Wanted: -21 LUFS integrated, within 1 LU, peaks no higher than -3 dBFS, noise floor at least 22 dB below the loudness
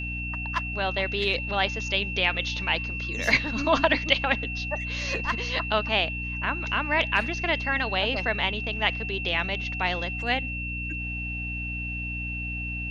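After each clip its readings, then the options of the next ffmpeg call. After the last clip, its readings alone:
hum 60 Hz; harmonics up to 300 Hz; hum level -32 dBFS; steady tone 2700 Hz; tone level -32 dBFS; loudness -26.0 LUFS; peak -4.0 dBFS; loudness target -21.0 LUFS
-> -af "bandreject=f=60:t=h:w=4,bandreject=f=120:t=h:w=4,bandreject=f=180:t=h:w=4,bandreject=f=240:t=h:w=4,bandreject=f=300:t=h:w=4"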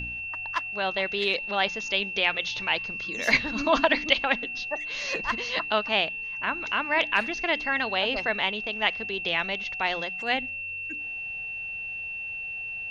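hum none; steady tone 2700 Hz; tone level -32 dBFS
-> -af "bandreject=f=2.7k:w=30"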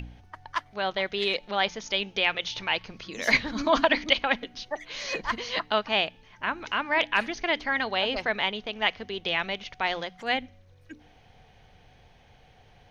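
steady tone none; loudness -27.5 LUFS; peak -5.0 dBFS; loudness target -21.0 LUFS
-> -af "volume=6.5dB,alimiter=limit=-3dB:level=0:latency=1"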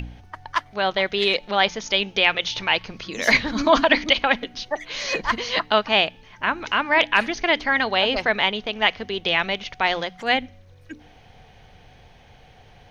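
loudness -21.0 LUFS; peak -3.0 dBFS; noise floor -51 dBFS

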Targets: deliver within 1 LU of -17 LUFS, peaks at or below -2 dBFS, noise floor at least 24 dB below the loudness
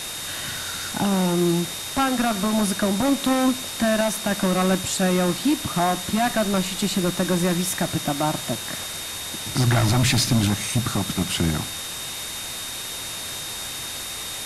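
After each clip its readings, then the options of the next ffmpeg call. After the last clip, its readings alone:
steady tone 3700 Hz; tone level -35 dBFS; noise floor -32 dBFS; noise floor target -47 dBFS; loudness -23.0 LUFS; peak -9.0 dBFS; loudness target -17.0 LUFS
-> -af "bandreject=f=3.7k:w=30"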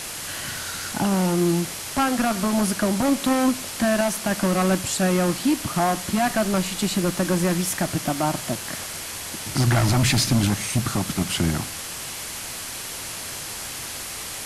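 steady tone none; noise floor -33 dBFS; noise floor target -48 dBFS
-> -af "afftdn=nr=15:nf=-33"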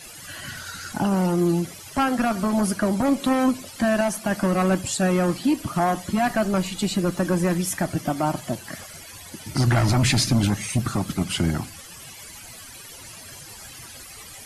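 noise floor -42 dBFS; noise floor target -47 dBFS
-> -af "afftdn=nr=6:nf=-42"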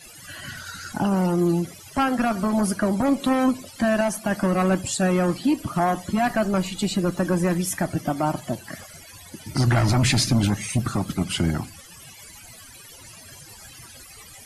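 noise floor -45 dBFS; noise floor target -47 dBFS
-> -af "afftdn=nr=6:nf=-45"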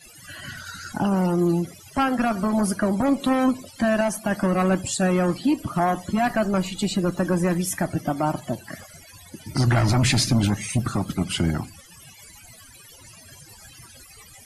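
noise floor -48 dBFS; loudness -23.0 LUFS; peak -10.0 dBFS; loudness target -17.0 LUFS
-> -af "volume=6dB"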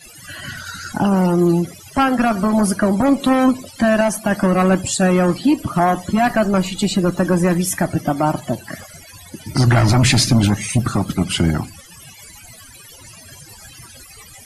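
loudness -17.0 LUFS; peak -4.0 dBFS; noise floor -42 dBFS

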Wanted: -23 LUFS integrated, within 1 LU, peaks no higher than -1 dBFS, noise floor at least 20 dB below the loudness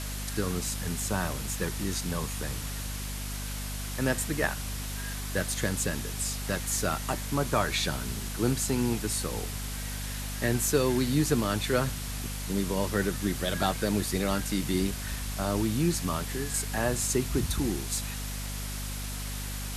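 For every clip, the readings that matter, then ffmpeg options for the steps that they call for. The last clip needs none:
hum 50 Hz; harmonics up to 250 Hz; hum level -34 dBFS; noise floor -35 dBFS; noise floor target -50 dBFS; loudness -30.0 LUFS; peak -11.5 dBFS; loudness target -23.0 LUFS
-> -af "bandreject=f=50:t=h:w=6,bandreject=f=100:t=h:w=6,bandreject=f=150:t=h:w=6,bandreject=f=200:t=h:w=6,bandreject=f=250:t=h:w=6"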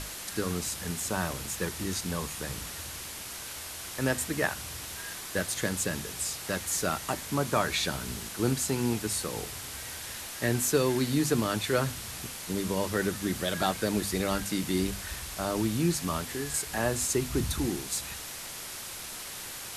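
hum none; noise floor -41 dBFS; noise floor target -51 dBFS
-> -af "afftdn=nr=10:nf=-41"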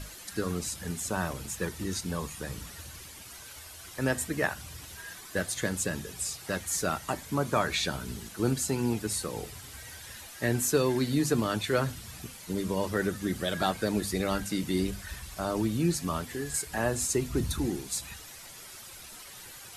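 noise floor -47 dBFS; noise floor target -51 dBFS
-> -af "afftdn=nr=6:nf=-47"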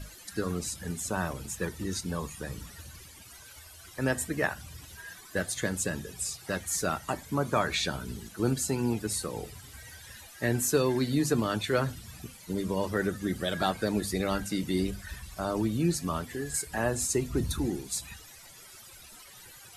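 noise floor -51 dBFS; loudness -31.0 LUFS; peak -12.5 dBFS; loudness target -23.0 LUFS
-> -af "volume=8dB"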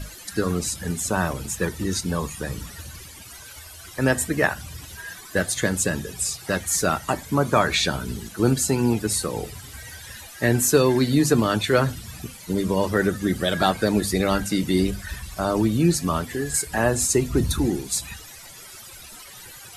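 loudness -23.0 LUFS; peak -4.5 dBFS; noise floor -43 dBFS

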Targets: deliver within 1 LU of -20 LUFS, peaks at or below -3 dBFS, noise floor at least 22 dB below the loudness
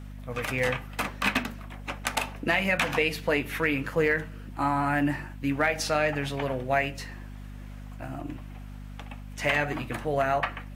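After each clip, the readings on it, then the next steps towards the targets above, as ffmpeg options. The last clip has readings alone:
hum 50 Hz; harmonics up to 250 Hz; hum level -38 dBFS; loudness -27.5 LUFS; peak -11.0 dBFS; loudness target -20.0 LUFS
-> -af "bandreject=f=50:t=h:w=4,bandreject=f=100:t=h:w=4,bandreject=f=150:t=h:w=4,bandreject=f=200:t=h:w=4,bandreject=f=250:t=h:w=4"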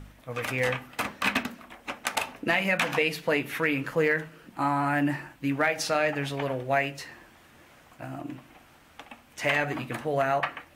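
hum none; loudness -27.5 LUFS; peak -11.0 dBFS; loudness target -20.0 LUFS
-> -af "volume=7.5dB"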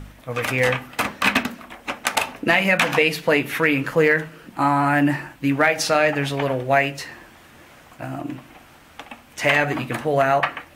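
loudness -20.0 LUFS; peak -3.5 dBFS; noise floor -49 dBFS

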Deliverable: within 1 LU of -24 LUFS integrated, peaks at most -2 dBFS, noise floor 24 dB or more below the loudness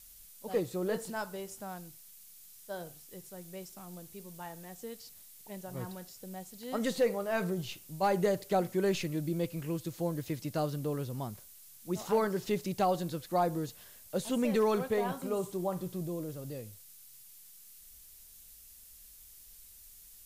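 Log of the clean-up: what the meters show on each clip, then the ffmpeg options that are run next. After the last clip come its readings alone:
noise floor -55 dBFS; noise floor target -59 dBFS; loudness -34.5 LUFS; peak -19.5 dBFS; loudness target -24.0 LUFS
-> -af "afftdn=nr=6:nf=-55"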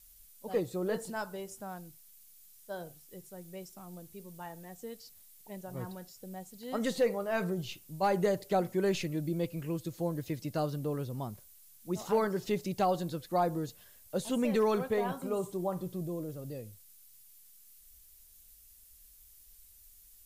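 noise floor -58 dBFS; loudness -34.0 LUFS; peak -19.5 dBFS; loudness target -24.0 LUFS
-> -af "volume=10dB"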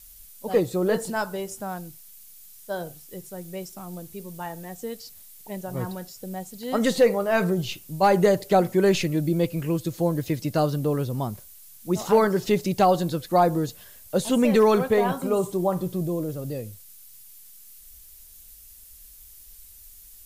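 loudness -24.0 LUFS; peak -9.5 dBFS; noise floor -48 dBFS

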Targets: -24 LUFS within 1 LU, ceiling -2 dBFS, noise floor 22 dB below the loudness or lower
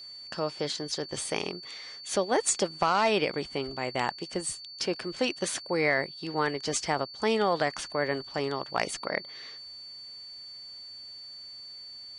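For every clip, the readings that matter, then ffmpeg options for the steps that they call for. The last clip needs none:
steady tone 4500 Hz; tone level -42 dBFS; loudness -30.0 LUFS; peak -13.0 dBFS; loudness target -24.0 LUFS
-> -af "bandreject=f=4.5k:w=30"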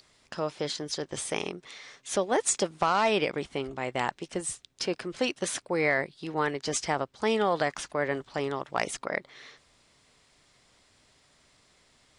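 steady tone none; loudness -30.0 LUFS; peak -13.0 dBFS; loudness target -24.0 LUFS
-> -af "volume=6dB"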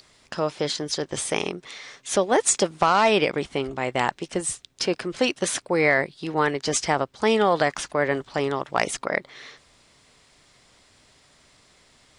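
loudness -24.0 LUFS; peak -7.0 dBFS; noise floor -59 dBFS

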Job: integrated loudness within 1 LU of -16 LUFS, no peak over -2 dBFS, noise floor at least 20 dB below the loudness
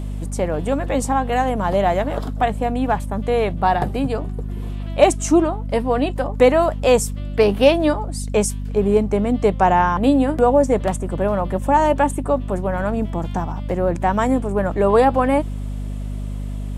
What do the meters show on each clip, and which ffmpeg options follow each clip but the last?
hum 50 Hz; harmonics up to 250 Hz; hum level -24 dBFS; loudness -19.0 LUFS; peak -1.0 dBFS; loudness target -16.0 LUFS
-> -af "bandreject=f=50:t=h:w=6,bandreject=f=100:t=h:w=6,bandreject=f=150:t=h:w=6,bandreject=f=200:t=h:w=6,bandreject=f=250:t=h:w=6"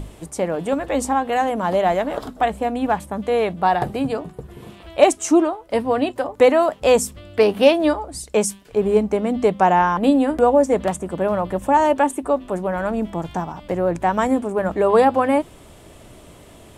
hum none; loudness -19.5 LUFS; peak -1.5 dBFS; loudness target -16.0 LUFS
-> -af "volume=3.5dB,alimiter=limit=-2dB:level=0:latency=1"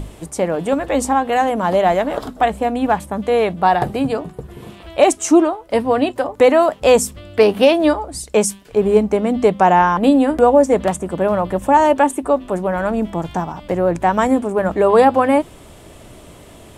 loudness -16.5 LUFS; peak -2.0 dBFS; noise floor -42 dBFS

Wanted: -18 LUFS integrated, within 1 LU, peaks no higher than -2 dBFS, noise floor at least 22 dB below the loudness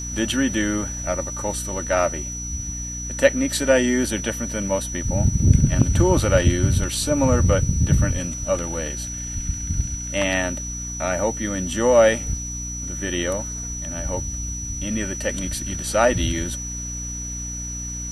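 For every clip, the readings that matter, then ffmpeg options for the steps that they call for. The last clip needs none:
hum 60 Hz; harmonics up to 300 Hz; hum level -31 dBFS; steady tone 5900 Hz; tone level -30 dBFS; loudness -22.5 LUFS; peak -1.5 dBFS; loudness target -18.0 LUFS
-> -af "bandreject=f=60:t=h:w=4,bandreject=f=120:t=h:w=4,bandreject=f=180:t=h:w=4,bandreject=f=240:t=h:w=4,bandreject=f=300:t=h:w=4"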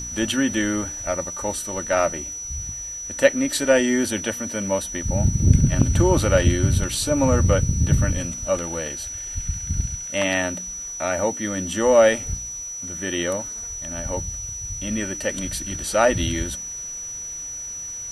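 hum none; steady tone 5900 Hz; tone level -30 dBFS
-> -af "bandreject=f=5.9k:w=30"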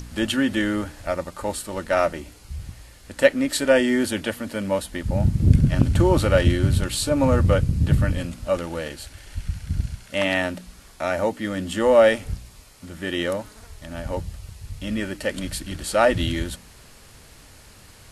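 steady tone none; loudness -22.5 LUFS; peak -1.5 dBFS; loudness target -18.0 LUFS
-> -af "volume=4.5dB,alimiter=limit=-2dB:level=0:latency=1"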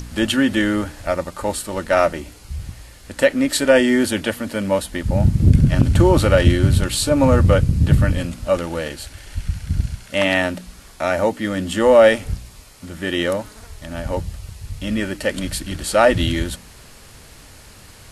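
loudness -18.5 LUFS; peak -2.0 dBFS; noise floor -44 dBFS

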